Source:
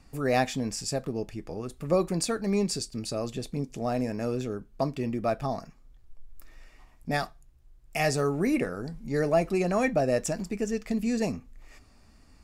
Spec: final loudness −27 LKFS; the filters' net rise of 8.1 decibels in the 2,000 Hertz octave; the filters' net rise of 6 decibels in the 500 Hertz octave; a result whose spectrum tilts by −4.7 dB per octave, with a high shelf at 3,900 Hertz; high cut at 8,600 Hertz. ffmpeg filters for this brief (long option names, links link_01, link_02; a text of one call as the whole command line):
ffmpeg -i in.wav -af "lowpass=8600,equalizer=frequency=500:width_type=o:gain=7,equalizer=frequency=2000:width_type=o:gain=8,highshelf=frequency=3900:gain=5.5,volume=-2.5dB" out.wav